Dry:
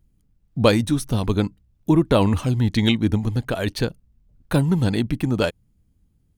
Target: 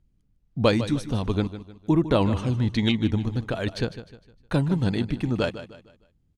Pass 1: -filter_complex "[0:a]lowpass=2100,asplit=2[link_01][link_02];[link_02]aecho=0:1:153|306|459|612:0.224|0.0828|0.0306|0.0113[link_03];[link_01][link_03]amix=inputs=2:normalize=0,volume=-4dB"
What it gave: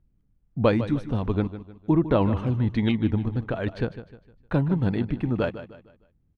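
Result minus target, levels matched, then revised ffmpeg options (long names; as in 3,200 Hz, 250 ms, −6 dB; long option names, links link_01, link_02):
8,000 Hz band −17.5 dB
-filter_complex "[0:a]lowpass=6400,asplit=2[link_01][link_02];[link_02]aecho=0:1:153|306|459|612:0.224|0.0828|0.0306|0.0113[link_03];[link_01][link_03]amix=inputs=2:normalize=0,volume=-4dB"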